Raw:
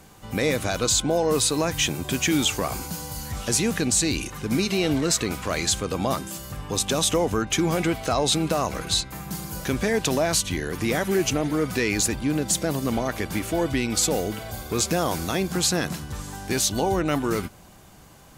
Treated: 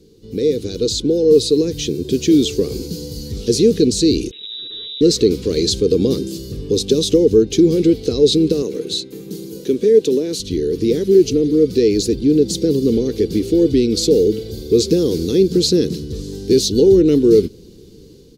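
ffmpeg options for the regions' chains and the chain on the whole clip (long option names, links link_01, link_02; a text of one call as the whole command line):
ffmpeg -i in.wav -filter_complex "[0:a]asettb=1/sr,asplit=3[link_01][link_02][link_03];[link_01]atrim=end=4.314[link_04];[link_02]atrim=start=4.31:end=5.01,asetpts=PTS-STARTPTS,afade=type=in:duration=0.004:curve=qsin,afade=type=out:start_time=0.696:duration=0.004:curve=qsin,acompressor=threshold=-28dB:ratio=10:attack=3.2:release=140:knee=1:detection=peak,aeval=exprs='max(val(0),0)':channel_layout=same,lowpass=frequency=3300:width_type=q:width=0.5098,lowpass=frequency=3300:width_type=q:width=0.6013,lowpass=frequency=3300:width_type=q:width=0.9,lowpass=frequency=3300:width_type=q:width=2.563,afreqshift=-3900[link_05];[link_03]atrim=start=5.006[link_06];[link_04][link_05]acrossfade=duration=0.004:curve1=hsin:curve2=qsin[link_07];[link_07][link_06]acrossfade=duration=0.004:curve1=qsin:curve2=hsin,asettb=1/sr,asplit=3[link_08][link_09][link_10];[link_08]atrim=end=8.624[link_11];[link_09]atrim=start=8.62:end=10.4,asetpts=PTS-STARTPTS,afade=type=in:duration=0.004:curve=qsin,afade=type=out:start_time=1.776:duration=0.004:curve=qsin,highpass=220,equalizer=frequency=4800:width_type=o:width=0.54:gain=-7.5[link_12];[link_10]atrim=start=10.396[link_13];[link_11][link_12]acrossfade=duration=0.004:curve1=hsin:curve2=qsin[link_14];[link_14][link_13]acrossfade=duration=0.004:curve1=qsin:curve2=hsin,firequalizer=gain_entry='entry(150,0);entry(450,13);entry(640,-25);entry(1200,-24);entry(4200,3);entry(7700,-11)':delay=0.05:min_phase=1,dynaudnorm=framelen=490:gausssize=3:maxgain=11.5dB,volume=-1dB" out.wav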